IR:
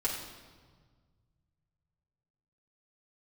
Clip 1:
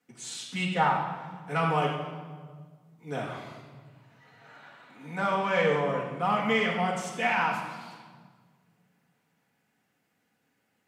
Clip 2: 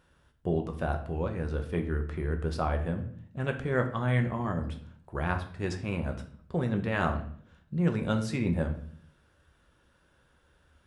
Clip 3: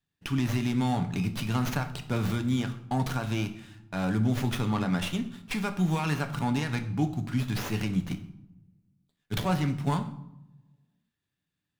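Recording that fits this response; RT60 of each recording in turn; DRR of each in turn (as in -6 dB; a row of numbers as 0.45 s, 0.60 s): 1; 1.6 s, 0.55 s, 0.85 s; -5.5 dB, 4.5 dB, 7.0 dB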